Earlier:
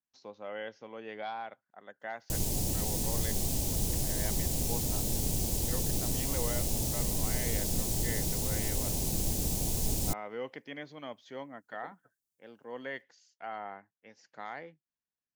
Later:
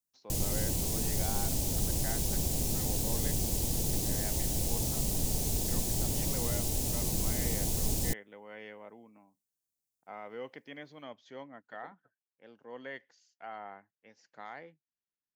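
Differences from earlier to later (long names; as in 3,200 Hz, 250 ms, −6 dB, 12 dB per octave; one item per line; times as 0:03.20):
speech −3.5 dB
background: entry −2.00 s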